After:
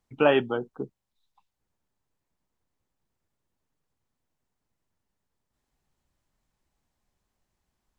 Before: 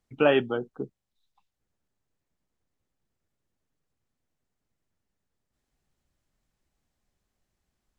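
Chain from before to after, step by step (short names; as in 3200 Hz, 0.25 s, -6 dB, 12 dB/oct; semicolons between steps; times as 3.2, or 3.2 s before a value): bell 950 Hz +5.5 dB 0.48 oct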